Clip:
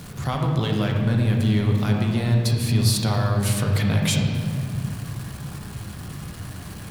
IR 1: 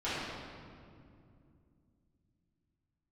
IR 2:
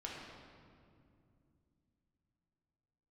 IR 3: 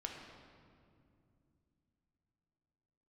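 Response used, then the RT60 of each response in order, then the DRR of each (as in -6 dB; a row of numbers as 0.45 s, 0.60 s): 3; 2.4 s, 2.5 s, 2.5 s; -13.5 dB, -4.0 dB, 0.5 dB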